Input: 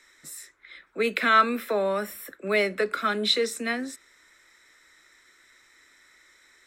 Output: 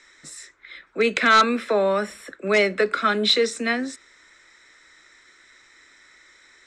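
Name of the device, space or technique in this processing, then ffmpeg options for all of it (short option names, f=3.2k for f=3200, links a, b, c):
synthesiser wavefolder: -af "aeval=exprs='0.2*(abs(mod(val(0)/0.2+3,4)-2)-1)':c=same,lowpass=f=7.8k:w=0.5412,lowpass=f=7.8k:w=1.3066,volume=5dB"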